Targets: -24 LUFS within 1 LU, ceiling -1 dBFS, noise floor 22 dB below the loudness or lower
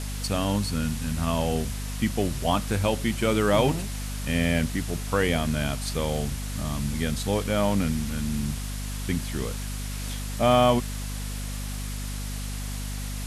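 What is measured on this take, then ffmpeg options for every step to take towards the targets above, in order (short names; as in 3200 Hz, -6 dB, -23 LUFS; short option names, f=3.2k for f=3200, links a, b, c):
hum 50 Hz; harmonics up to 250 Hz; hum level -30 dBFS; noise floor -32 dBFS; noise floor target -49 dBFS; loudness -27.0 LUFS; peak -8.0 dBFS; loudness target -24.0 LUFS
-> -af "bandreject=f=50:t=h:w=6,bandreject=f=100:t=h:w=6,bandreject=f=150:t=h:w=6,bandreject=f=200:t=h:w=6,bandreject=f=250:t=h:w=6"
-af "afftdn=nr=17:nf=-32"
-af "volume=3dB"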